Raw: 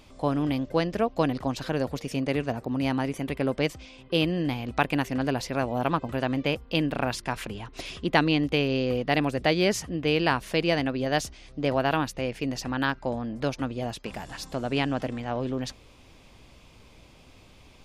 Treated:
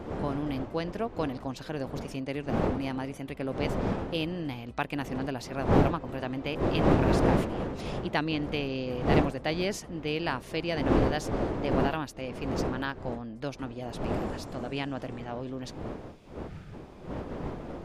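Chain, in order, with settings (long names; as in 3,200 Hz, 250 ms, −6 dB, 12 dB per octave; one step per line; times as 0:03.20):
wind on the microphone 460 Hz −25 dBFS
gain on a spectral selection 0:16.48–0:16.74, 210–1,200 Hz −12 dB
level −7 dB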